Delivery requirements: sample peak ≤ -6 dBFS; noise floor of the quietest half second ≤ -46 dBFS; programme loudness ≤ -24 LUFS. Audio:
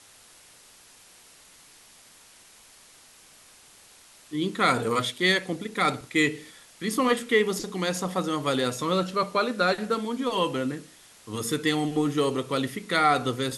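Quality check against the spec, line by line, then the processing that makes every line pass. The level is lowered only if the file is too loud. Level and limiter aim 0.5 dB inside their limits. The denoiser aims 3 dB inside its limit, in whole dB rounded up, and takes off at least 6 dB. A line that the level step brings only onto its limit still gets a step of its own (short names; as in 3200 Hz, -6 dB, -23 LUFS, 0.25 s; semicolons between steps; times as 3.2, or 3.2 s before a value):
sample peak -8.5 dBFS: OK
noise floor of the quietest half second -54 dBFS: OK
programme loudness -26.0 LUFS: OK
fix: none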